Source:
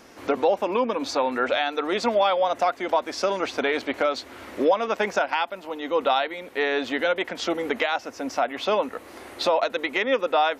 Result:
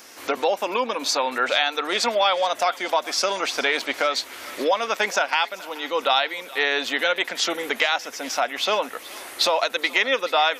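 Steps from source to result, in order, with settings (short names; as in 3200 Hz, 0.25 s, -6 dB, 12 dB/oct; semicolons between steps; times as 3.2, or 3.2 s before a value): tilt +3.5 dB/oct; thinning echo 0.427 s, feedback 65%, high-pass 950 Hz, level -17.5 dB; gain +1.5 dB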